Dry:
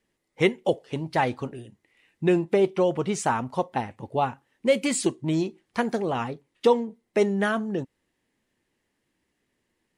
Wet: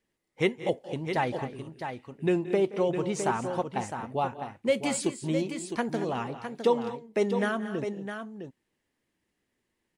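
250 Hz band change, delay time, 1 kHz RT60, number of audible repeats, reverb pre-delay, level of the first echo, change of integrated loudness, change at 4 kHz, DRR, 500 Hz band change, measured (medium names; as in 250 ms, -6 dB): -3.5 dB, 175 ms, no reverb, 3, no reverb, -19.0 dB, -4.0 dB, -3.5 dB, no reverb, -3.5 dB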